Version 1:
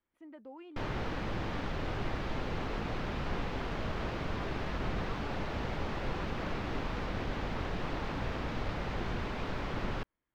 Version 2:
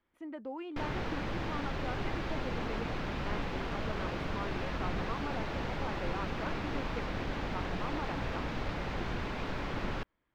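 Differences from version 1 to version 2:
speech +8.0 dB; reverb: on, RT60 1.1 s

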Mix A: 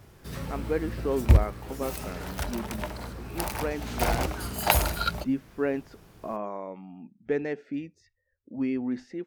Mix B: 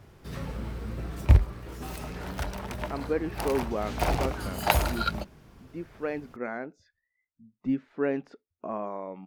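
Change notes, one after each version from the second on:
speech: entry +2.40 s; master: add treble shelf 6.1 kHz -8.5 dB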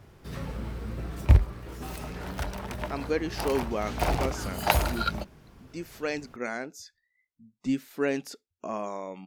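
speech: remove low-pass 1.6 kHz 12 dB/octave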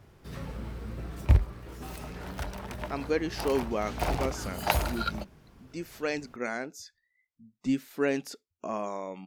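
background -3.0 dB

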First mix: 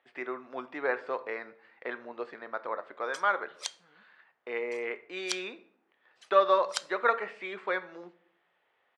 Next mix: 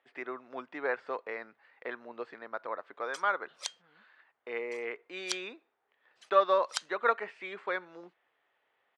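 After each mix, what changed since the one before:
reverb: off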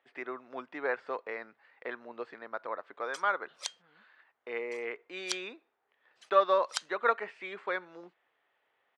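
no change

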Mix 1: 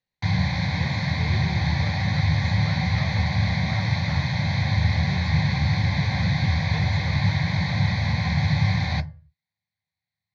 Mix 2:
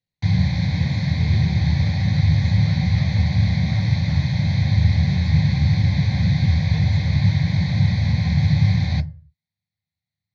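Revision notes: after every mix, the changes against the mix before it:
background: add bass shelf 420 Hz +5.5 dB; master: add peaking EQ 1.1 kHz -9 dB 1.7 oct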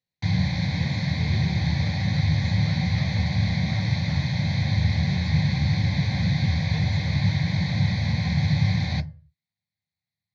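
master: add bass shelf 120 Hz -10 dB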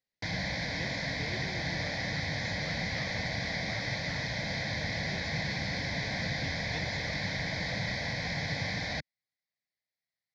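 reverb: off

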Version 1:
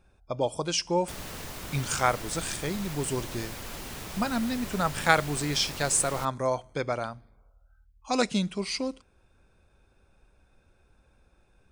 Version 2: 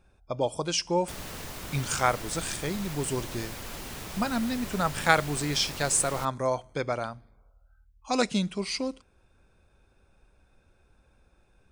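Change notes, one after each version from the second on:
no change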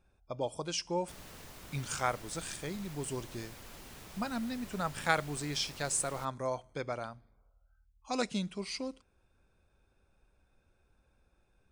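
speech -7.5 dB; background -11.0 dB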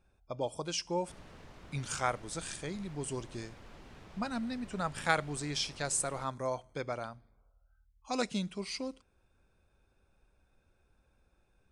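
background: add tape spacing loss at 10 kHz 20 dB

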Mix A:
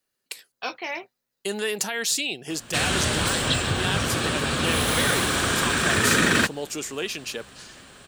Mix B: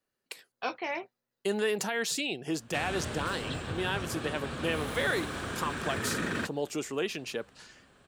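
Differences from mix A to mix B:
background -10.5 dB; master: add treble shelf 2.5 kHz -10.5 dB

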